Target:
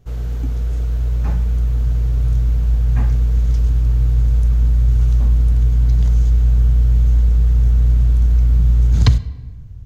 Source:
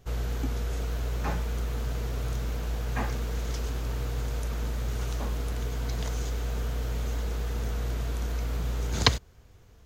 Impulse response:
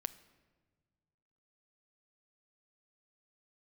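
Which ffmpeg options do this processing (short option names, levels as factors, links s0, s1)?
-filter_complex "[0:a]asubboost=boost=3.5:cutoff=190,asplit=2[s0][s1];[1:a]atrim=start_sample=2205,lowshelf=f=390:g=11.5[s2];[s1][s2]afir=irnorm=-1:irlink=0,volume=4.47[s3];[s0][s3]amix=inputs=2:normalize=0,volume=0.141"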